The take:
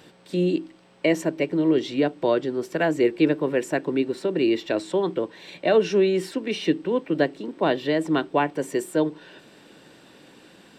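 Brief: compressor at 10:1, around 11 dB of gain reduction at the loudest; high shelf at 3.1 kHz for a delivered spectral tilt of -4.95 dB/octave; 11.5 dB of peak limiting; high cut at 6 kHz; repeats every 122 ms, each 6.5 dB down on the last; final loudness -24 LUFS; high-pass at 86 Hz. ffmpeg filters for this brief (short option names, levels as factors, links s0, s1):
-af "highpass=86,lowpass=6000,highshelf=f=3100:g=-5.5,acompressor=threshold=0.0501:ratio=10,alimiter=level_in=1.06:limit=0.0631:level=0:latency=1,volume=0.944,aecho=1:1:122|244|366|488|610|732:0.473|0.222|0.105|0.0491|0.0231|0.0109,volume=3.16"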